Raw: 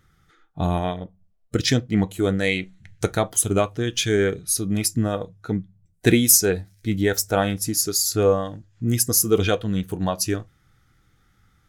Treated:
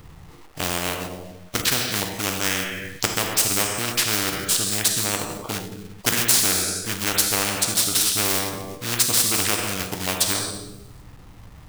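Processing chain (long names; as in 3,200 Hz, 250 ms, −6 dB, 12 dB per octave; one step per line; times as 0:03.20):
adaptive Wiener filter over 25 samples
high-shelf EQ 7,600 Hz +5.5 dB
dense smooth reverb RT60 0.8 s, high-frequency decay 0.95×, DRR 5.5 dB
log-companded quantiser 6 bits
formants moved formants −4 semitones
every bin compressed towards the loudest bin 4 to 1
level −3.5 dB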